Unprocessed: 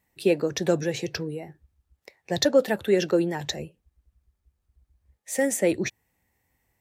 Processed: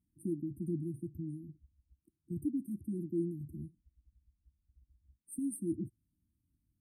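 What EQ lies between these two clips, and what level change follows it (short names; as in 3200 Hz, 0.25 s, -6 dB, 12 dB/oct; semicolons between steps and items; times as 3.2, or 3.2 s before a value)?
dynamic EQ 220 Hz, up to -4 dB, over -35 dBFS, Q 0.73; brick-wall FIR band-stop 350–8400 Hz; air absorption 57 m; -3.5 dB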